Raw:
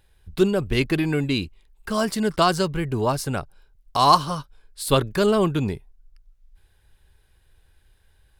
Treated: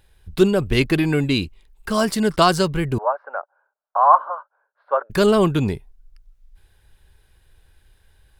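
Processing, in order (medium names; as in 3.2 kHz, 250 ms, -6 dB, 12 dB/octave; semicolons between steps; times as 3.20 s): 2.98–5.10 s: elliptic band-pass 560–1500 Hz, stop band 70 dB; trim +3.5 dB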